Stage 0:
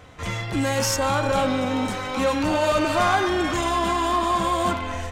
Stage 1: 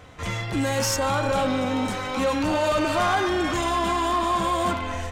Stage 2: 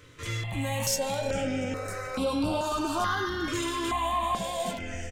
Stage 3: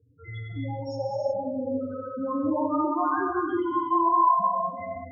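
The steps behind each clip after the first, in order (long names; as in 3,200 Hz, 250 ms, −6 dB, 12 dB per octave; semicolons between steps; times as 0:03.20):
soft clipping −14.5 dBFS, distortion −19 dB
high-shelf EQ 6,400 Hz +4 dB; double-tracking delay 18 ms −10.5 dB; step-sequenced phaser 2.3 Hz 200–6,500 Hz; level −3.5 dB
spectral peaks only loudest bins 4; loudspeaker in its box 130–4,900 Hz, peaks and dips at 180 Hz −4 dB, 350 Hz +4 dB, 670 Hz −3 dB, 970 Hz +7 dB; reverb whose tail is shaped and stops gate 380 ms flat, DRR −1.5 dB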